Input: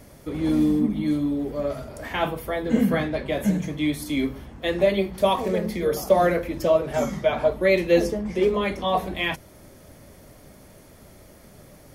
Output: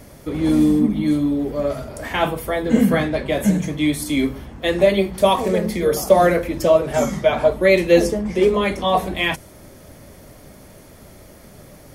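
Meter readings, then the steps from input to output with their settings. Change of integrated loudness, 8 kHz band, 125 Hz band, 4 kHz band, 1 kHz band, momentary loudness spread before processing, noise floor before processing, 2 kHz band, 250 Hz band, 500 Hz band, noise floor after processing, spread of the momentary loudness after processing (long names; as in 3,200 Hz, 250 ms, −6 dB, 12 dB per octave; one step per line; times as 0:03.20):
+5.0 dB, +8.5 dB, +5.0 dB, +5.5 dB, +5.0 dB, 8 LU, −49 dBFS, +5.0 dB, +5.0 dB, +5.0 dB, −44 dBFS, 8 LU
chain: dynamic equaliser 8,500 Hz, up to +6 dB, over −54 dBFS, Q 1.5
level +5 dB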